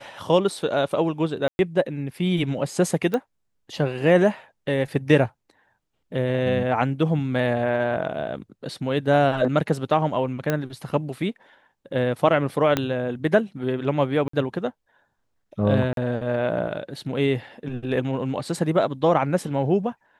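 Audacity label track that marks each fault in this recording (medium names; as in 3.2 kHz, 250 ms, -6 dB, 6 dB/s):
1.480000	1.590000	dropout 111 ms
3.140000	3.140000	pop -13 dBFS
10.500000	10.500000	pop -9 dBFS
12.770000	12.770000	pop -7 dBFS
14.280000	14.330000	dropout 54 ms
15.930000	15.970000	dropout 42 ms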